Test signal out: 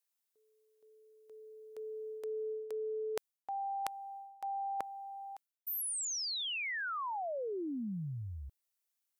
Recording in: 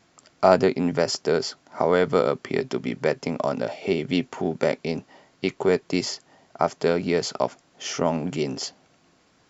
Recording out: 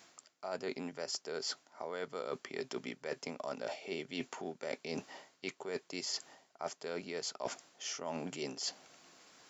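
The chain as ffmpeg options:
-af "highpass=f=520:p=1,highshelf=f=6000:g=9,areverse,acompressor=threshold=0.0141:ratio=20,areverse,volume=1.12"

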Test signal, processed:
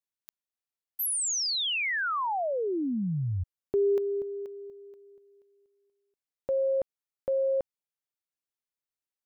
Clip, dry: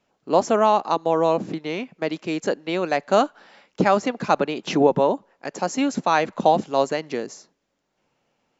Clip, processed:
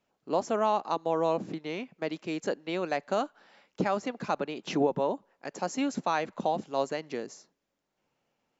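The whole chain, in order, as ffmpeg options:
-af "alimiter=limit=0.376:level=0:latency=1:release=485,volume=0.422"

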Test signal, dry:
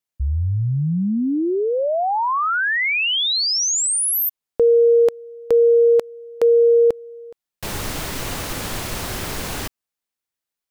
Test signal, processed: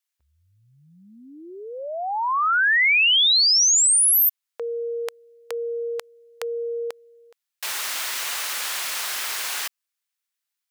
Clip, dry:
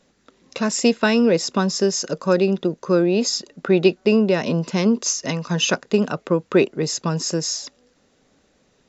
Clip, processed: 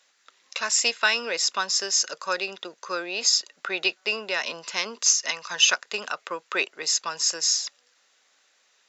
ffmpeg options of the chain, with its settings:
-af "highpass=1300,volume=1.41"

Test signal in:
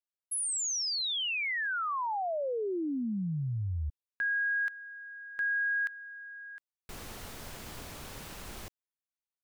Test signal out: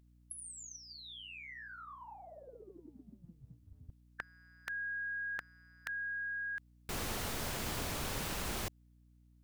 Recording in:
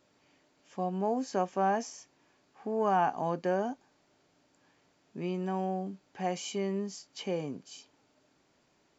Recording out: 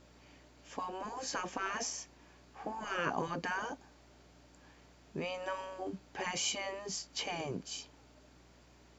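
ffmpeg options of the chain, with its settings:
-af "acontrast=87,afftfilt=real='re*lt(hypot(re,im),0.178)':imag='im*lt(hypot(re,im),0.178)':win_size=1024:overlap=0.75,aeval=exprs='val(0)+0.000794*(sin(2*PI*60*n/s)+sin(2*PI*2*60*n/s)/2+sin(2*PI*3*60*n/s)/3+sin(2*PI*4*60*n/s)/4+sin(2*PI*5*60*n/s)/5)':c=same,volume=0.891"

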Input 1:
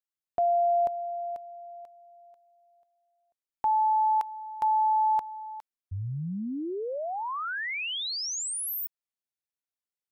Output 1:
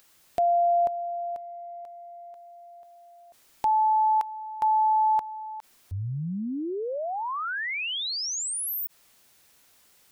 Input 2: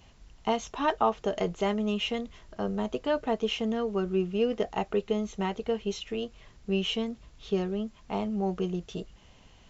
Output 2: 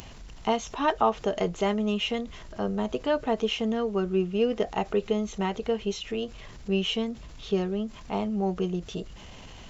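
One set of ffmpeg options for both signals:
-af "acompressor=mode=upward:threshold=0.0112:ratio=2.5:attack=3.9:release=22:knee=2.83:detection=peak,volume=1.26"

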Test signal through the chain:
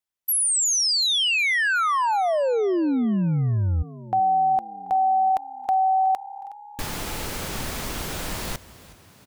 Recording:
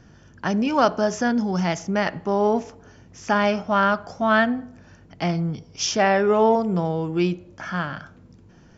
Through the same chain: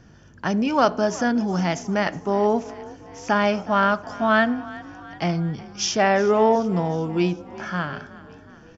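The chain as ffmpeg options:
-filter_complex "[0:a]asplit=6[s0][s1][s2][s3][s4][s5];[s1]adelay=367,afreqshift=34,volume=0.112[s6];[s2]adelay=734,afreqshift=68,volume=0.0661[s7];[s3]adelay=1101,afreqshift=102,volume=0.0389[s8];[s4]adelay=1468,afreqshift=136,volume=0.0232[s9];[s5]adelay=1835,afreqshift=170,volume=0.0136[s10];[s0][s6][s7][s8][s9][s10]amix=inputs=6:normalize=0"

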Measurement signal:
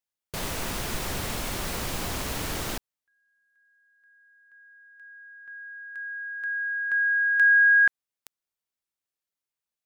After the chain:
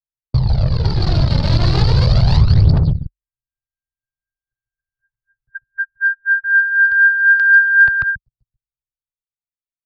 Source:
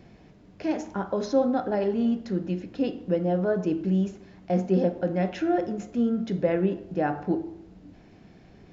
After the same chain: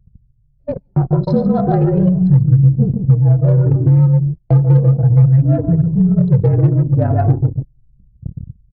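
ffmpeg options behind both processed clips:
-filter_complex "[0:a]highpass=91,tiltshelf=f=1200:g=7,aecho=1:1:142.9|277:0.708|0.282,dynaudnorm=f=380:g=9:m=6.68,lowshelf=f=230:t=q:w=3:g=10,asplit=2[s0][s1];[s1]asoftclip=type=hard:threshold=0.708,volume=0.596[s2];[s0][s2]amix=inputs=2:normalize=0,aphaser=in_gain=1:out_gain=1:delay=3.3:decay=0.55:speed=0.36:type=triangular,agate=range=0.178:threshold=0.1:ratio=16:release=116:detection=peak,afreqshift=-47,lowpass=f=4500:t=q:w=6.9,acompressor=threshold=0.316:ratio=4:attack=41:release=574:knee=1:detection=rms,anlmdn=10000"

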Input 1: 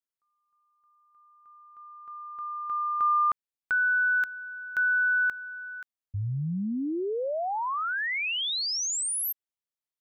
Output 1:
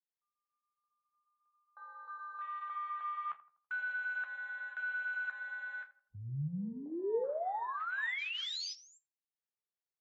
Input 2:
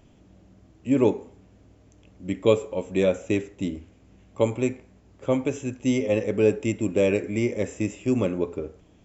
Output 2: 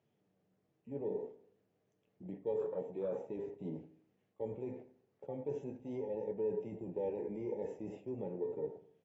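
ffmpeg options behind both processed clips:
-filter_complex "[0:a]areverse,acompressor=threshold=0.0178:ratio=8:attack=16:release=165:knee=6:detection=peak,areverse,alimiter=level_in=1.88:limit=0.0631:level=0:latency=1:release=93,volume=0.531,highpass=f=130:w=0.5412,highpass=f=130:w=1.3066,equalizer=f=150:t=q:w=4:g=6,equalizer=f=270:t=q:w=4:g=-7,equalizer=f=450:t=q:w=4:g=8,equalizer=f=760:t=q:w=4:g=3,equalizer=f=1800:t=q:w=4:g=4,lowpass=f=5900:w=0.5412,lowpass=f=5900:w=1.3066,acompressor=mode=upward:threshold=0.01:ratio=1.5:attack=0.2:release=61:knee=2.83:detection=peak,agate=range=0.447:threshold=0.00355:ratio=16:release=40:detection=rms,afwtdn=0.0112,asplit=2[s0][s1];[s1]adelay=82,lowpass=f=1300:p=1,volume=0.211,asplit=2[s2][s3];[s3]adelay=82,lowpass=f=1300:p=1,volume=0.45,asplit=2[s4][s5];[s5]adelay=82,lowpass=f=1300:p=1,volume=0.45,asplit=2[s6][s7];[s7]adelay=82,lowpass=f=1300:p=1,volume=0.45[s8];[s0][s2][s4][s6][s8]amix=inputs=5:normalize=0,flanger=delay=8.4:depth=6.4:regen=-50:speed=0.47:shape=triangular,volume=1.12" -ar 22050 -c:a aac -b:a 24k

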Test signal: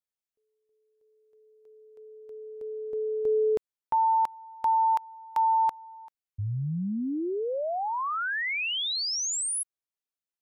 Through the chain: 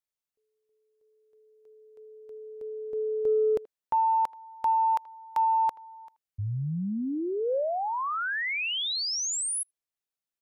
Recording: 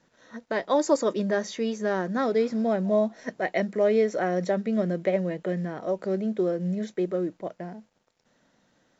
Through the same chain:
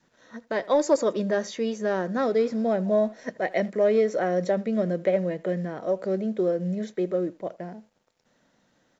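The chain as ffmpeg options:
-filter_complex "[0:a]asplit=2[s0][s1];[s1]adelay=80,highpass=300,lowpass=3400,asoftclip=type=hard:threshold=0.112,volume=0.0891[s2];[s0][s2]amix=inputs=2:normalize=0,adynamicequalizer=threshold=0.0141:dfrequency=530:dqfactor=3.1:tfrequency=530:tqfactor=3.1:attack=5:release=100:ratio=0.375:range=2:mode=boostabove:tftype=bell,acontrast=55,volume=0.473"

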